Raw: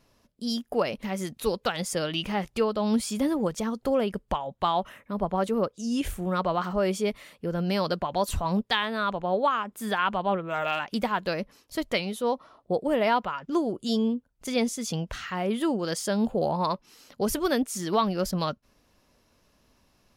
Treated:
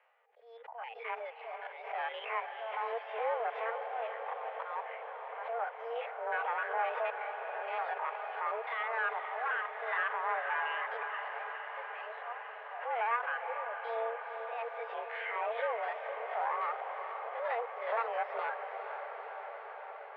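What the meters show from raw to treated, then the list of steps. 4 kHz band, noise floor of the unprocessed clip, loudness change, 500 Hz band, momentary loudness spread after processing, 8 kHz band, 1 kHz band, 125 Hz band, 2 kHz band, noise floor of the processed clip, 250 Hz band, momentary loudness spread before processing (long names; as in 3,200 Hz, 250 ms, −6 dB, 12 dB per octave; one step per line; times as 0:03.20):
−17.5 dB, −67 dBFS, −9.0 dB, −10.0 dB, 10 LU, below −40 dB, −4.5 dB, below −40 dB, −1.0 dB, −48 dBFS, below −40 dB, 6 LU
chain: spectrum averaged block by block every 50 ms
notch filter 1,100 Hz, Q 9.2
de-essing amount 90%
spectral tilt +3 dB per octave
in parallel at +1 dB: brickwall limiter −24 dBFS, peak gain reduction 11 dB
on the sum: reverb reduction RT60 0.62 s
volume swells 334 ms
asymmetric clip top −31 dBFS
feedback delay with all-pass diffusion 467 ms, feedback 77%, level −7.5 dB
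single-sideband voice off tune +230 Hz 270–2,200 Hz
background raised ahead of every attack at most 87 dB per second
level −4.5 dB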